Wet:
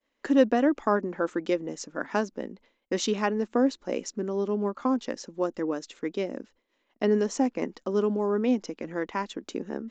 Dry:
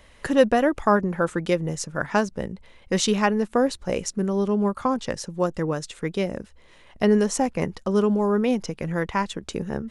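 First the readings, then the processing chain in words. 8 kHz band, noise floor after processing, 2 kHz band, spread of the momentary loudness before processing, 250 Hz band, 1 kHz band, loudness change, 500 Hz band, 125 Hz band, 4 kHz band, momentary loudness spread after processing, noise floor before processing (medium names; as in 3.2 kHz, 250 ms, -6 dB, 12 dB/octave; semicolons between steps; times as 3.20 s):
-8.0 dB, -76 dBFS, -6.5 dB, 10 LU, -3.5 dB, -6.0 dB, -4.0 dB, -4.0 dB, -11.0 dB, -6.5 dB, 11 LU, -53 dBFS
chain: resampled via 16 kHz; resonant low shelf 180 Hz -13.5 dB, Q 3; expander -43 dBFS; trim -6.5 dB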